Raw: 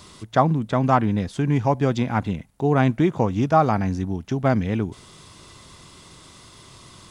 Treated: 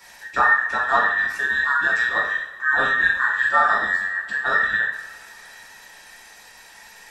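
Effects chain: band inversion scrambler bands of 2000 Hz; two-slope reverb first 0.59 s, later 3 s, from -22 dB, DRR -6 dB; gain -6.5 dB

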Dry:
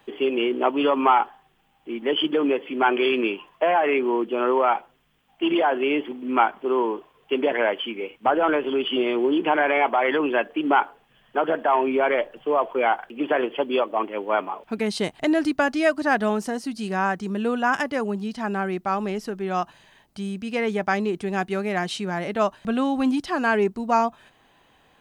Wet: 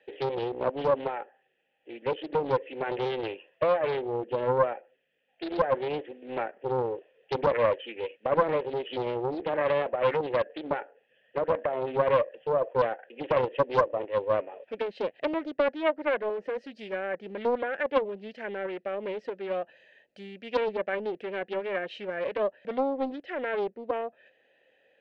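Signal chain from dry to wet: treble ducked by the level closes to 1700 Hz, closed at -20 dBFS; in parallel at -1.5 dB: vocal rider 2 s; on the sum: vowel filter e; Doppler distortion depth 0.5 ms

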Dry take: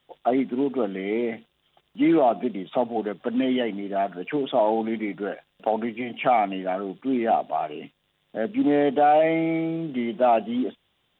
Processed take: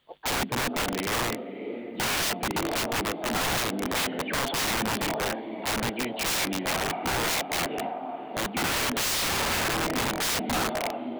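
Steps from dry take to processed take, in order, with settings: harmoniser +4 st -11 dB; diffused feedback echo 0.548 s, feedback 45%, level -11 dB; wrapped overs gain 22 dB

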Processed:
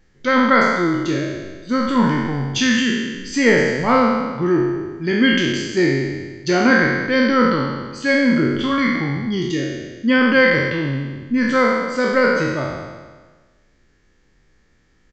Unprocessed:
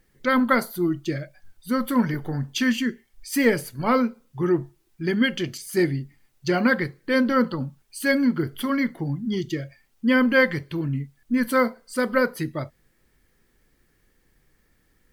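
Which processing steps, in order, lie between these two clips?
spectral trails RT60 1.41 s; downsampling 16000 Hz; gain +2.5 dB

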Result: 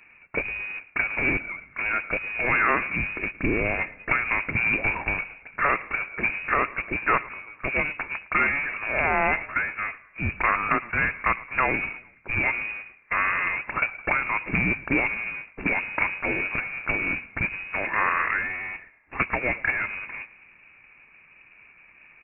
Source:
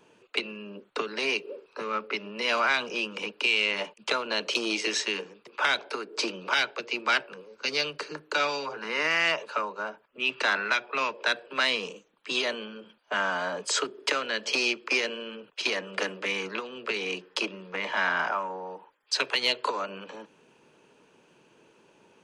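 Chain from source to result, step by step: half-waves squared off; low shelf 280 Hz +6.5 dB; inverted band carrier 2700 Hz; on a send: frequency-shifting echo 0.11 s, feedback 50%, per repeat -37 Hz, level -20.5 dB

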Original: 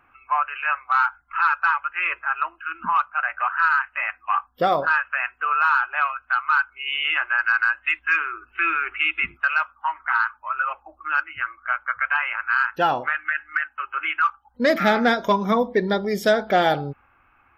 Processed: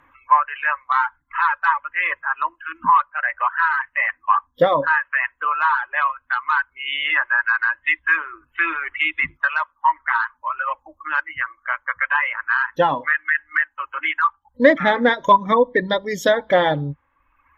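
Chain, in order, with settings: reverb removal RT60 1.1 s; ripple EQ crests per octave 1.1, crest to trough 12 dB; treble ducked by the level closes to 2500 Hz, closed at -16.5 dBFS; gain +3.5 dB

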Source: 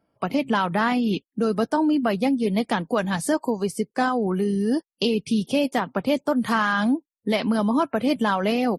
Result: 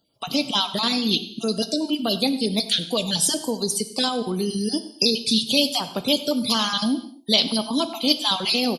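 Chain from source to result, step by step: random spectral dropouts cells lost 27%; resonant high shelf 2600 Hz +13.5 dB, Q 3; outdoor echo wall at 17 m, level -18 dB; non-linear reverb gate 0.29 s falling, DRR 10.5 dB; gain -1.5 dB

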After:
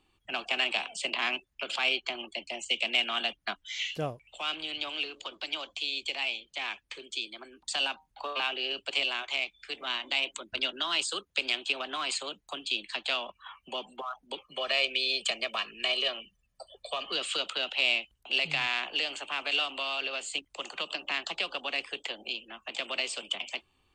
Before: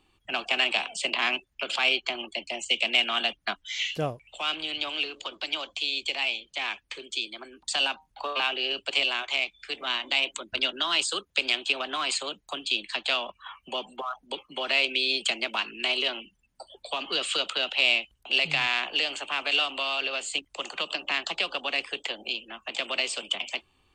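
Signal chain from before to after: 14.41–17.12 comb 1.7 ms, depth 60%; gain -4 dB

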